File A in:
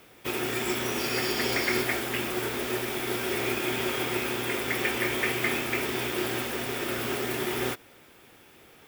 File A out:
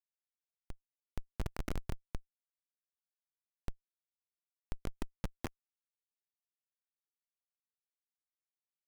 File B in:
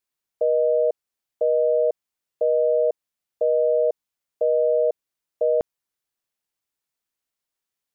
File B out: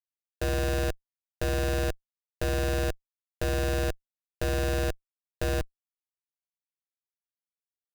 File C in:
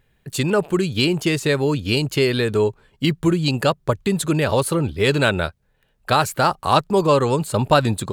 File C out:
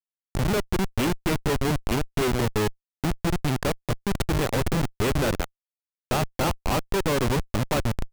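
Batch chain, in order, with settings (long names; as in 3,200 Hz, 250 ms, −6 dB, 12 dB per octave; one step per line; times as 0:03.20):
comparator with hysteresis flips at −16.5 dBFS
level −2.5 dB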